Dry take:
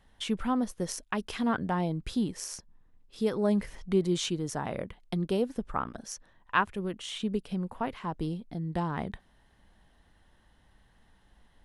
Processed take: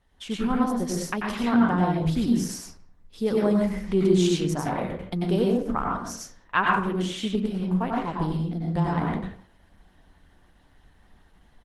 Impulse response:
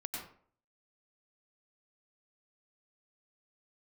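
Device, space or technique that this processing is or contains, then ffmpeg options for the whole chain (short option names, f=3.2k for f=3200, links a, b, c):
speakerphone in a meeting room: -filter_complex "[1:a]atrim=start_sample=2205[a];[0:a][a]afir=irnorm=-1:irlink=0,asplit=2[b][c];[c]adelay=170,highpass=300,lowpass=3.4k,asoftclip=type=hard:threshold=-22dB,volume=-23dB[d];[b][d]amix=inputs=2:normalize=0,dynaudnorm=f=140:g=5:m=6dB" -ar 48000 -c:a libopus -b:a 16k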